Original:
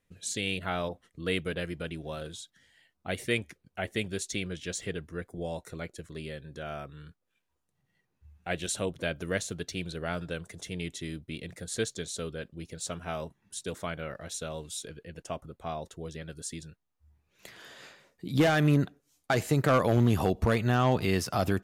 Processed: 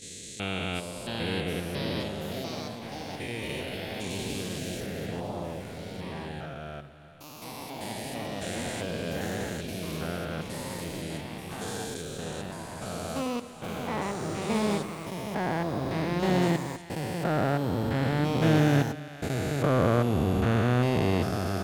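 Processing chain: spectrogram pixelated in time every 400 ms; gate -47 dBFS, range -9 dB; on a send: two-band feedback delay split 590 Hz, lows 129 ms, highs 397 ms, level -14 dB; on the sum: ever faster or slower copies 735 ms, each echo +3 st, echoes 3; trim +3 dB

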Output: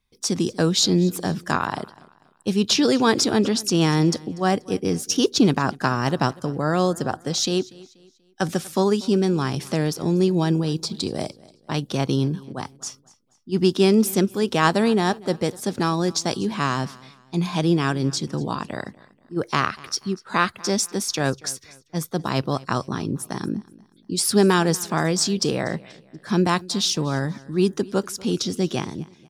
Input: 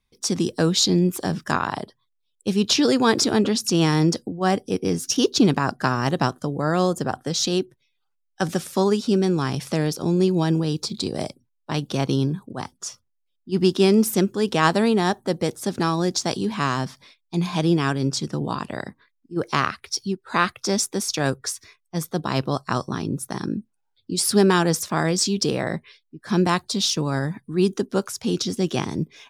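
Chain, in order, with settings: fade out at the end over 0.62 s; feedback delay 241 ms, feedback 37%, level -22 dB

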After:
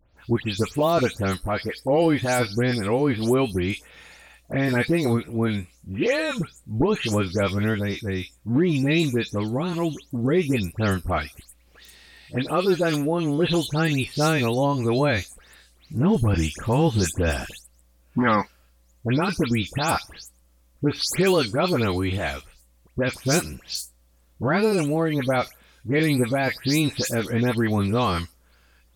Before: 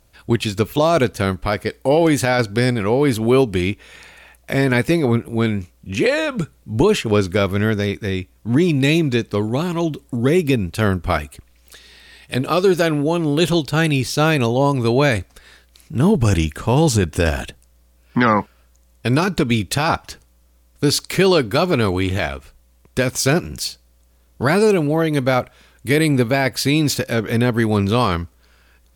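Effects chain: delay that grows with frequency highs late, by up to 171 ms; trim -4.5 dB

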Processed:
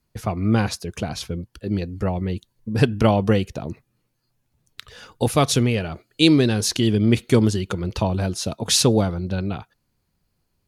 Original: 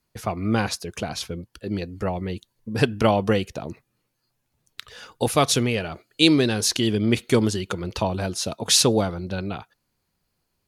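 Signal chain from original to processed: bass shelf 260 Hz +8 dB; trim -1 dB

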